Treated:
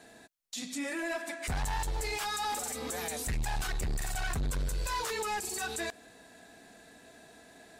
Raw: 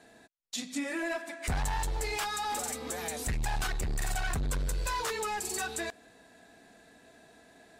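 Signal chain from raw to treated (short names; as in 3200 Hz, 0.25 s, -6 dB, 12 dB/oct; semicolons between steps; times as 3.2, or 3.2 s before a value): high shelf 4700 Hz +4.5 dB; limiter -30 dBFS, peak gain reduction 10 dB; gain +2 dB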